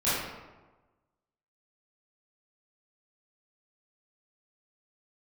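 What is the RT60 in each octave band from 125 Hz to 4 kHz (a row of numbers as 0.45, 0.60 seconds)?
1.3, 1.2, 1.2, 1.2, 0.90, 0.70 seconds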